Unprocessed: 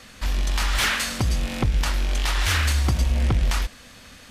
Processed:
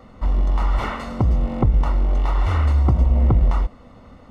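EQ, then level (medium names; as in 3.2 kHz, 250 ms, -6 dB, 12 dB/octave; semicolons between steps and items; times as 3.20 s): Savitzky-Golay filter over 65 samples; +5.0 dB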